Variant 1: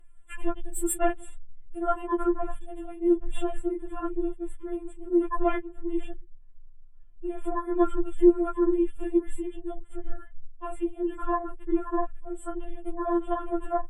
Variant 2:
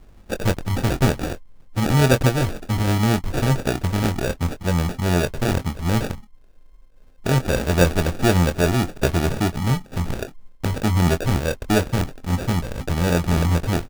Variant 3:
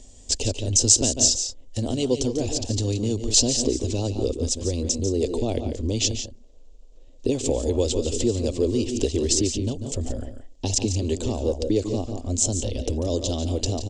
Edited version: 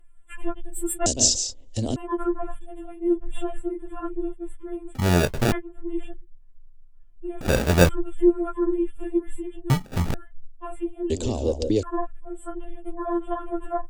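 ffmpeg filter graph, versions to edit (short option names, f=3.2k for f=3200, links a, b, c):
-filter_complex "[2:a]asplit=2[a][b];[1:a]asplit=3[c][d][e];[0:a]asplit=6[f][g][h][i][j][k];[f]atrim=end=1.062[l];[a]atrim=start=1.058:end=1.962[m];[g]atrim=start=1.958:end=4.952[n];[c]atrim=start=4.948:end=5.522[o];[h]atrim=start=5.518:end=7.412[p];[d]atrim=start=7.408:end=7.892[q];[i]atrim=start=7.888:end=9.702[r];[e]atrim=start=9.698:end=10.142[s];[j]atrim=start=10.138:end=11.102[t];[b]atrim=start=11.098:end=11.832[u];[k]atrim=start=11.828[v];[l][m]acrossfade=d=0.004:c1=hsin:c2=hsin[w];[w][n]acrossfade=d=0.004:c1=hsin:c2=hsin[x];[x][o]acrossfade=d=0.004:c1=hsin:c2=hsin[y];[y][p]acrossfade=d=0.004:c1=hsin:c2=hsin[z];[z][q]acrossfade=d=0.004:c1=hsin:c2=hsin[aa];[aa][r]acrossfade=d=0.004:c1=hsin:c2=hsin[ab];[ab][s]acrossfade=d=0.004:c1=hsin:c2=hsin[ac];[ac][t]acrossfade=d=0.004:c1=hsin:c2=hsin[ad];[ad][u]acrossfade=d=0.004:c1=hsin:c2=hsin[ae];[ae][v]acrossfade=d=0.004:c1=hsin:c2=hsin"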